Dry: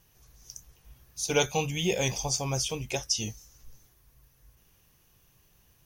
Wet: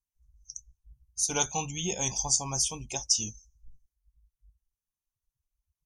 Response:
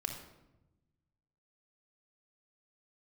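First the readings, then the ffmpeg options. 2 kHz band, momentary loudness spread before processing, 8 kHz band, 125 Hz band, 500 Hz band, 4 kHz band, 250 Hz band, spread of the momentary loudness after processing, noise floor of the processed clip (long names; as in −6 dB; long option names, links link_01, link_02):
−6.5 dB, 20 LU, +5.0 dB, −5.5 dB, −8.5 dB, −1.0 dB, −4.5 dB, 19 LU, below −85 dBFS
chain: -af "afftdn=noise_reduction=33:noise_floor=-44,equalizer=frequency=125:width_type=o:width=1:gain=-6,equalizer=frequency=500:width_type=o:width=1:gain=-11,equalizer=frequency=1000:width_type=o:width=1:gain=6,equalizer=frequency=2000:width_type=o:width=1:gain=-10,equalizer=frequency=4000:width_type=o:width=1:gain=-3,equalizer=frequency=8000:width_type=o:width=1:gain=10"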